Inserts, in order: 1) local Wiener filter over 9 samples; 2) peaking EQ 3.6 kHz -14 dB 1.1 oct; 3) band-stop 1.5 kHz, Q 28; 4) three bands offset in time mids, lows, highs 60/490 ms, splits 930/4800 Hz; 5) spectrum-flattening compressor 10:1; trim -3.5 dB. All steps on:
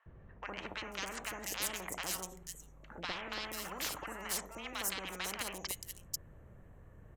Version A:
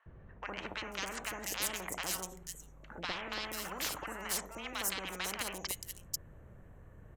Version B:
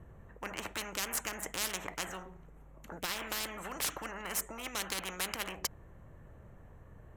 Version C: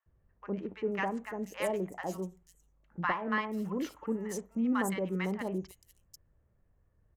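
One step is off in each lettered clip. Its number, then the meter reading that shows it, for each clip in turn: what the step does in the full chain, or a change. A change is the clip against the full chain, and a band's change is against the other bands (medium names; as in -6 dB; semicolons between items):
3, loudness change +1.5 LU; 4, momentary loudness spread change +3 LU; 5, 4 kHz band -18.5 dB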